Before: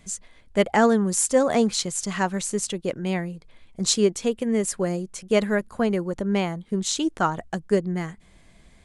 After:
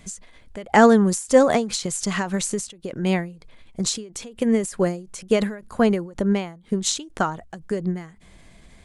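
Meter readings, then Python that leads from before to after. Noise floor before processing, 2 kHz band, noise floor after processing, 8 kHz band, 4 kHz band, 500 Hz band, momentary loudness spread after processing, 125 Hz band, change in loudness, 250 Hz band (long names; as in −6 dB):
−55 dBFS, +2.0 dB, −51 dBFS, −1.0 dB, −0.5 dB, +1.5 dB, 18 LU, +1.5 dB, +2.0 dB, +2.5 dB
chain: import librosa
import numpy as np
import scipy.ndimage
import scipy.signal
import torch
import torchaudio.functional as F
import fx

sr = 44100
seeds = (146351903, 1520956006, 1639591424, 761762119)

y = fx.end_taper(x, sr, db_per_s=120.0)
y = y * librosa.db_to_amplitude(5.0)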